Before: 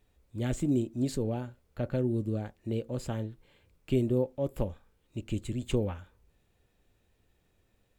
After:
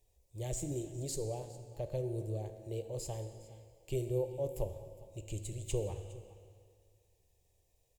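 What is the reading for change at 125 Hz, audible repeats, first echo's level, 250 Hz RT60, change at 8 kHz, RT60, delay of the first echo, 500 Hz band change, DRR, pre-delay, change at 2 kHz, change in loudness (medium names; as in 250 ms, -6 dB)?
-6.0 dB, 1, -20.0 dB, 2.0 s, +4.0 dB, 2.0 s, 410 ms, -4.5 dB, 7.5 dB, 18 ms, -11.0 dB, -7.5 dB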